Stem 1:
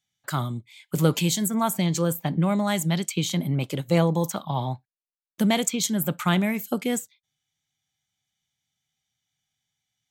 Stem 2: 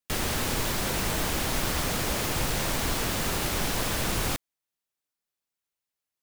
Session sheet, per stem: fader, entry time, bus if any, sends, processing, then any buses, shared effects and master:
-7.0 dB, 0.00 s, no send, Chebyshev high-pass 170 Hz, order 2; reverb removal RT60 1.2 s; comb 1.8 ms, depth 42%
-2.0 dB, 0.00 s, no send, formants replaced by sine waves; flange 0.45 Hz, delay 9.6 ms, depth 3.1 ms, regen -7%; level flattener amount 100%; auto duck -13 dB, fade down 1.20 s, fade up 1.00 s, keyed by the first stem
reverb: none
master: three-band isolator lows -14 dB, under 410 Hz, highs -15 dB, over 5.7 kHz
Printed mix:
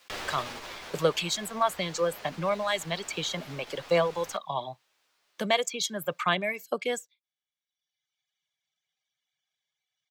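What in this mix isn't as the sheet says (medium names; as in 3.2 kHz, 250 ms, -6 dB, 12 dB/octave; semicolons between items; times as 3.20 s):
stem 1 -7.0 dB -> +1.5 dB; stem 2: missing formants replaced by sine waves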